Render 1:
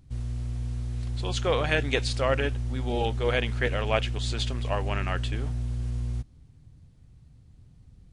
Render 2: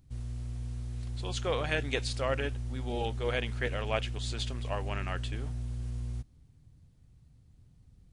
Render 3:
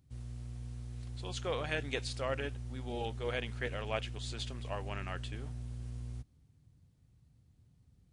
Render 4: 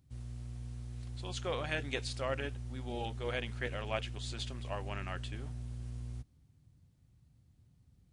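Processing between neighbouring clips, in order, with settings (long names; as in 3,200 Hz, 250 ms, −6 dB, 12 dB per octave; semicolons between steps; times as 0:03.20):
high-shelf EQ 8,800 Hz +6 dB; level −6 dB
high-pass filter 59 Hz; level −4.5 dB
notch filter 450 Hz, Q 12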